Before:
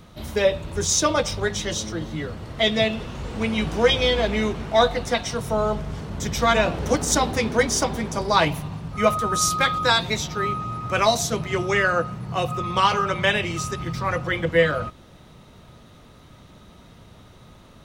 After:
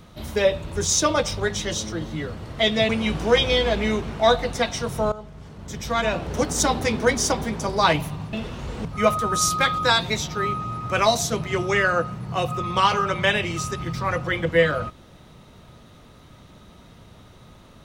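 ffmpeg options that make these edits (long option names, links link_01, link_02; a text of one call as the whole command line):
ffmpeg -i in.wav -filter_complex "[0:a]asplit=5[link_01][link_02][link_03][link_04][link_05];[link_01]atrim=end=2.892[link_06];[link_02]atrim=start=3.408:end=5.64,asetpts=PTS-STARTPTS,afade=type=out:start_time=2.228:duration=0.004:curve=hsin:silence=0.158489[link_07];[link_03]atrim=start=5.64:end=8.852,asetpts=PTS-STARTPTS,afade=type=in:duration=1.66:silence=0.158489[link_08];[link_04]atrim=start=2.888:end=3.412[link_09];[link_05]atrim=start=8.848[link_10];[link_07][link_08]concat=n=2:v=0:a=1[link_11];[link_06][link_11]acrossfade=duration=0.004:curve1=hsin:curve2=hsin[link_12];[link_12][link_09]acrossfade=duration=0.004:curve1=hsin:curve2=hsin[link_13];[link_13][link_10]acrossfade=duration=0.004:curve1=hsin:curve2=hsin" out.wav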